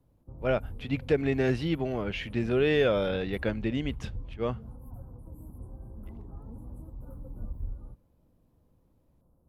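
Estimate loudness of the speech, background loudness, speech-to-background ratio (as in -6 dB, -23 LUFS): -29.0 LUFS, -44.5 LUFS, 15.5 dB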